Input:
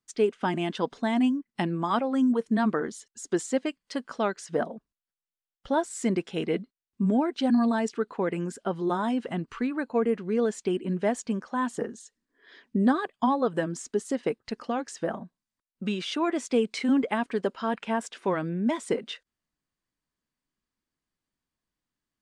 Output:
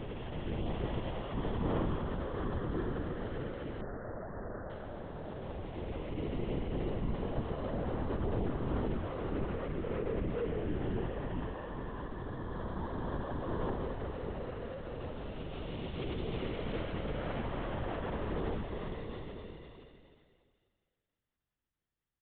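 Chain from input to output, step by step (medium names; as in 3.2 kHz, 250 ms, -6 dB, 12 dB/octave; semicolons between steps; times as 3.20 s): spectral blur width 1380 ms; comb 6.1 ms, depth 96%; feedback delay 336 ms, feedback 37%, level -15.5 dB; LPC vocoder at 8 kHz whisper; 3.81–4.70 s: steep low-pass 1.9 kHz 96 dB/octave; trim -3 dB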